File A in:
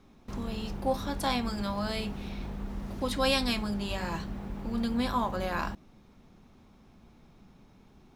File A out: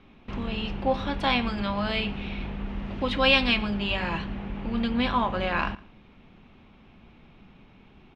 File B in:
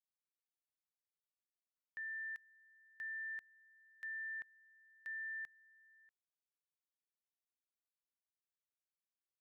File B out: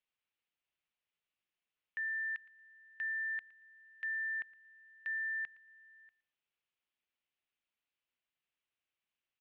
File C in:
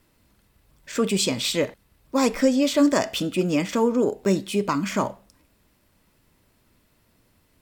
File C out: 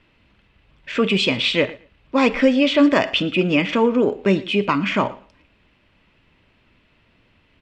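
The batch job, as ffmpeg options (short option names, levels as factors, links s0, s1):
-af "lowpass=f=2800:t=q:w=2.7,aecho=1:1:115|230:0.0944|0.016,volume=1.5"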